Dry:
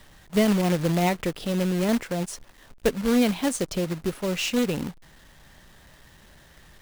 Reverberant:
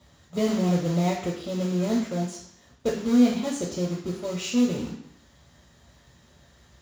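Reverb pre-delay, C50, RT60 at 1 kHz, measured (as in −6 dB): 3 ms, 4.5 dB, 0.70 s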